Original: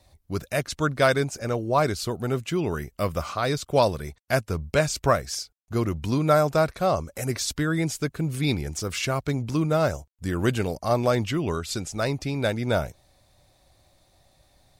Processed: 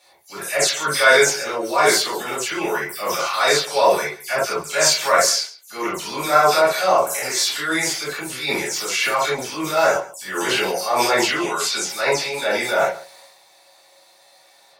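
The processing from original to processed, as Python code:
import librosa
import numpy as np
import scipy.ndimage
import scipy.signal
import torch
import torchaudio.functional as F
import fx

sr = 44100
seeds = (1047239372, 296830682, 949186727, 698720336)

p1 = fx.spec_delay(x, sr, highs='early', ms=101)
p2 = scipy.signal.sosfilt(scipy.signal.butter(2, 730.0, 'highpass', fs=sr, output='sos'), p1)
p3 = fx.high_shelf(p2, sr, hz=5500.0, db=-3.5)
p4 = fx.level_steps(p3, sr, step_db=10)
p5 = p3 + (p4 * librosa.db_to_amplitude(2.5))
p6 = fx.transient(p5, sr, attack_db=-9, sustain_db=7)
p7 = p6 + fx.echo_single(p6, sr, ms=137, db=-18.5, dry=0)
p8 = fx.rev_gated(p7, sr, seeds[0], gate_ms=90, shape='flat', drr_db=-6.5)
y = p8 * librosa.db_to_amplitude(1.0)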